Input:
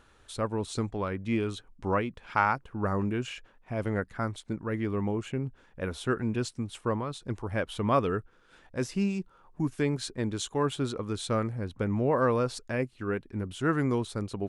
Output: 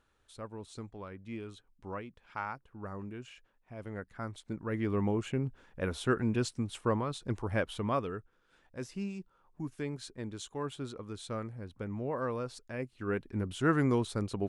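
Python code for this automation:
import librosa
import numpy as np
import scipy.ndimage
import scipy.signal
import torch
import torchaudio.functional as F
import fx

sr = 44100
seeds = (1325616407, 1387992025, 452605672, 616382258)

y = fx.gain(x, sr, db=fx.line((3.78, -13.0), (4.95, -0.5), (7.57, -0.5), (8.12, -9.5), (12.71, -9.5), (13.21, -0.5)))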